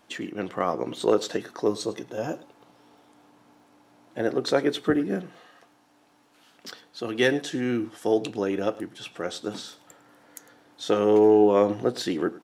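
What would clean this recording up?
de-click; inverse comb 104 ms -19.5 dB

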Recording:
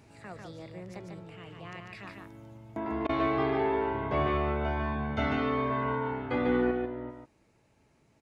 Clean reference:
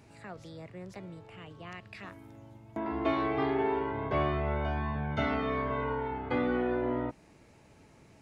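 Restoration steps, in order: interpolate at 3.07 s, 21 ms; inverse comb 146 ms -4 dB; gain correction +10 dB, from 6.71 s

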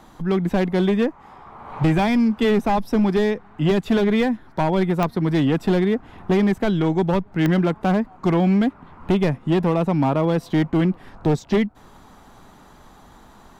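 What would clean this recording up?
clip repair -13 dBFS; de-click

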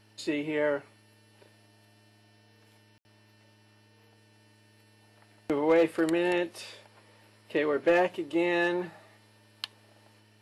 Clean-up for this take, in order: clip repair -16.5 dBFS; de-hum 107 Hz, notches 4; room tone fill 2.98–3.05 s

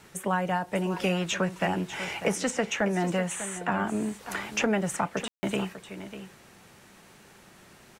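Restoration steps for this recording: room tone fill 5.28–5.43 s; inverse comb 596 ms -12.5 dB

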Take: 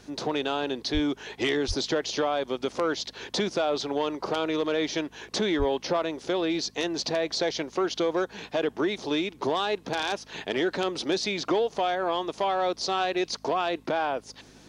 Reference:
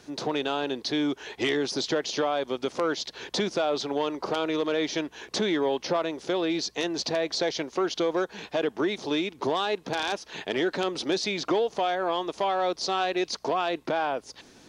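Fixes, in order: de-hum 52.1 Hz, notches 5; de-plosive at 0.93/1.67/5.58 s

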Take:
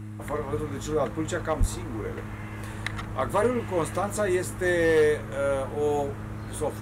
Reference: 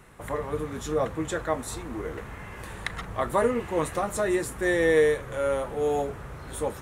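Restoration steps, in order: clip repair -15 dBFS; de-hum 105.9 Hz, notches 3; 1.59–1.71 s: high-pass 140 Hz 24 dB/octave

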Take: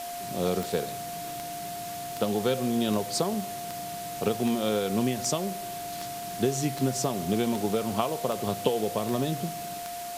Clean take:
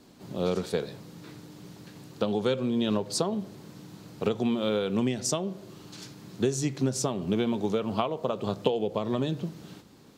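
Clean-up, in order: de-click; band-stop 700 Hz, Q 30; noise print and reduce 12 dB

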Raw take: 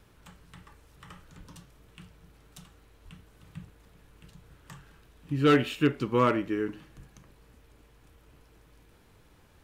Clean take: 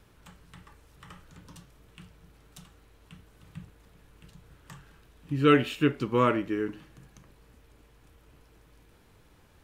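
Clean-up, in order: clip repair -14 dBFS; 1.37–1.49 s: high-pass 140 Hz 24 dB/octave; 3.04–3.16 s: high-pass 140 Hz 24 dB/octave; 6.96–7.08 s: high-pass 140 Hz 24 dB/octave

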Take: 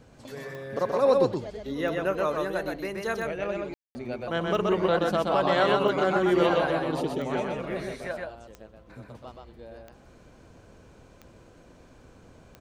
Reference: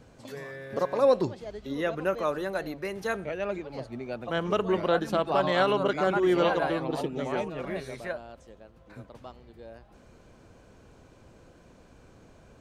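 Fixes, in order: de-click; room tone fill 3.74–3.95 s; inverse comb 126 ms -3 dB

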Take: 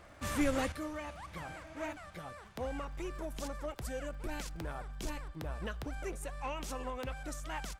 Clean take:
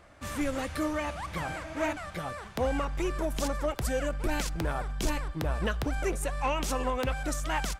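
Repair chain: de-click; gain correction +10 dB, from 0.72 s

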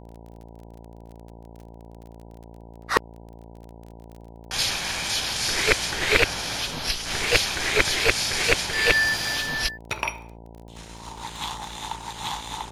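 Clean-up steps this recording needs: de-click; de-hum 56.9 Hz, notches 17

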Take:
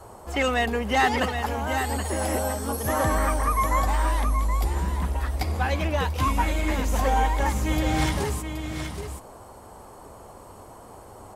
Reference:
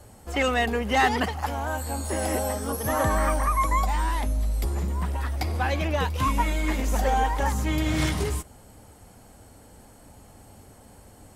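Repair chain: noise print and reduce 6 dB; inverse comb 774 ms -7.5 dB

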